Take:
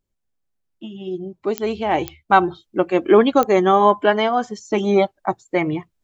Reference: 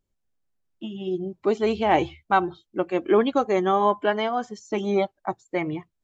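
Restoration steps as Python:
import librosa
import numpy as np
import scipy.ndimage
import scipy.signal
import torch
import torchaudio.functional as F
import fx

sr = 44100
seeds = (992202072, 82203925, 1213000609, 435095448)

y = fx.fix_declick_ar(x, sr, threshold=10.0)
y = fx.gain(y, sr, db=fx.steps((0.0, 0.0), (2.29, -6.5)))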